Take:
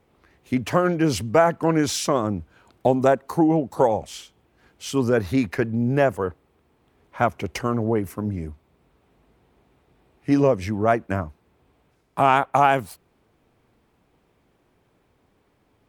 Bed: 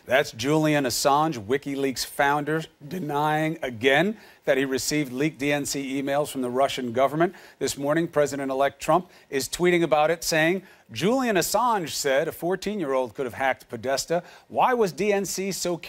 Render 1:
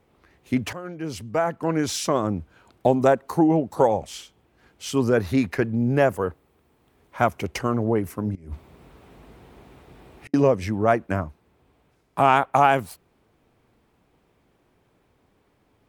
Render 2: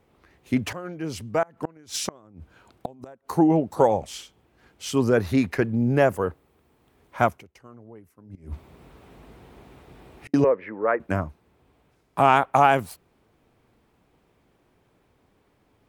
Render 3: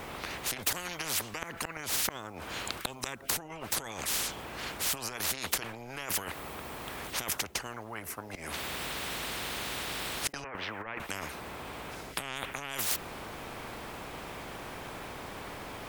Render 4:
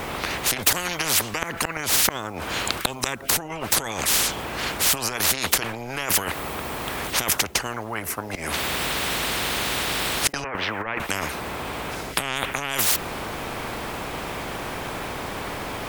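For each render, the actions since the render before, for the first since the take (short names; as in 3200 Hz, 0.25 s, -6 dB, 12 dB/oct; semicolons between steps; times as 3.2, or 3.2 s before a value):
0.73–2.33 fade in, from -19 dB; 6–7.45 high shelf 11000 Hz -> 6200 Hz +7.5 dB; 8.35–10.34 negative-ratio compressor -39 dBFS, ratio -0.5
1.42–3.3 flipped gate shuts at -13 dBFS, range -28 dB; 7.25–8.48 dip -23.5 dB, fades 0.19 s; 10.44–11 speaker cabinet 460–2000 Hz, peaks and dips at 480 Hz +5 dB, 730 Hz -9 dB, 1900 Hz +3 dB
negative-ratio compressor -31 dBFS, ratio -1; spectral compressor 10:1
gain +11 dB; limiter -2 dBFS, peak gain reduction 3 dB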